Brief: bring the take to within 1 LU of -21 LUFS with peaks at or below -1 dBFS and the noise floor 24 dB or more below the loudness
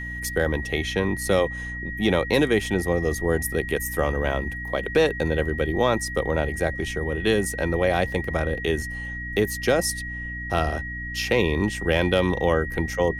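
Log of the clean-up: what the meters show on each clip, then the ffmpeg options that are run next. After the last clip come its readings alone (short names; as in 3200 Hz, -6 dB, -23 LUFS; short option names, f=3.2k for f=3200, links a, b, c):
hum 60 Hz; harmonics up to 300 Hz; hum level -33 dBFS; steady tone 1900 Hz; tone level -32 dBFS; loudness -24.0 LUFS; peak -6.0 dBFS; loudness target -21.0 LUFS
-> -af "bandreject=f=60:t=h:w=4,bandreject=f=120:t=h:w=4,bandreject=f=180:t=h:w=4,bandreject=f=240:t=h:w=4,bandreject=f=300:t=h:w=4"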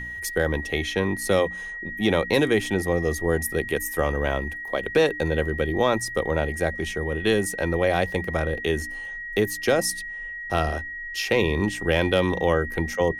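hum none; steady tone 1900 Hz; tone level -32 dBFS
-> -af "bandreject=f=1.9k:w=30"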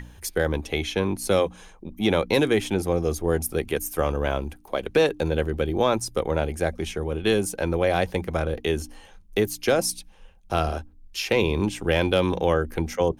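steady tone none; loudness -25.0 LUFS; peak -7.0 dBFS; loudness target -21.0 LUFS
-> -af "volume=4dB"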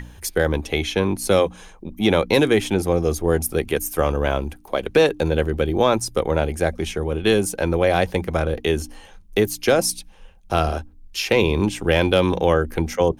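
loudness -21.0 LUFS; peak -3.0 dBFS; noise floor -46 dBFS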